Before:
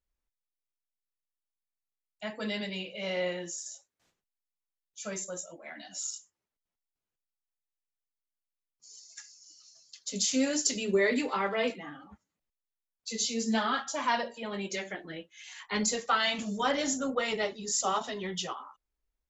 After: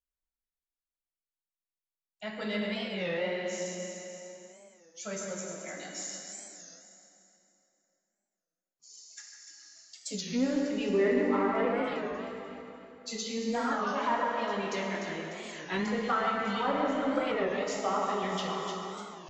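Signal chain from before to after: echo whose repeats swap between lows and highs 149 ms, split 2 kHz, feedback 63%, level -4.5 dB; low-pass that closes with the level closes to 1.4 kHz, closed at -24 dBFS; in parallel at -3 dB: saturation -24.5 dBFS, distortion -15 dB; on the sum: spectral noise reduction 11 dB; plate-style reverb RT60 3.1 s, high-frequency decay 0.7×, DRR 0.5 dB; warped record 33 1/3 rpm, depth 160 cents; trim -6 dB

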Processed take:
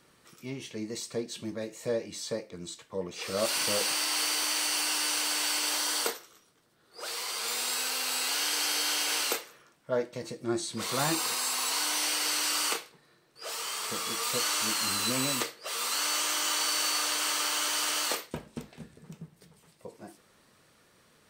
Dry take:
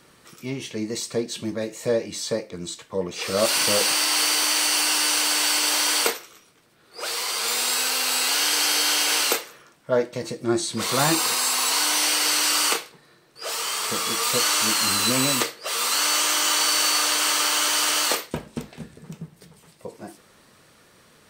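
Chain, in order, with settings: 5.77–7.08 s: peaking EQ 2.4 kHz -6 dB 0.37 oct; trim -8 dB

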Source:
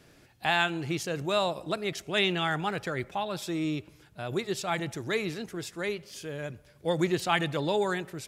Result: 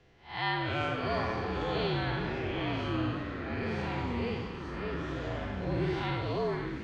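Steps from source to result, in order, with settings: spectral blur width 204 ms; comb of notches 270 Hz; tape speed +21%; frequency shift -64 Hz; ever faster or slower copies 187 ms, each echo -5 st, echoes 3; distance through air 190 m; repeats whose band climbs or falls 112 ms, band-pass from 1.2 kHz, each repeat 1.4 oct, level -3.5 dB

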